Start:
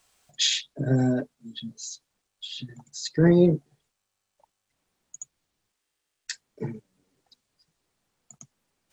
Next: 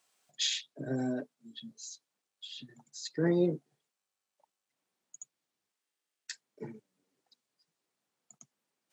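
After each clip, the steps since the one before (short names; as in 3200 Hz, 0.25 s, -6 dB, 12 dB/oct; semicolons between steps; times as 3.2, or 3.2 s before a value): HPF 200 Hz 12 dB/oct; gain -8 dB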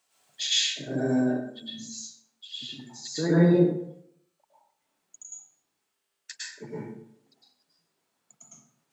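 plate-style reverb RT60 0.71 s, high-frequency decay 0.6×, pre-delay 95 ms, DRR -8.5 dB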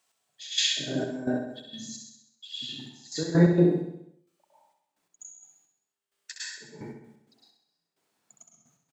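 step gate "x....xxxx..x.x.x" 130 bpm -12 dB; on a send: feedback echo 65 ms, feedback 56%, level -6.5 dB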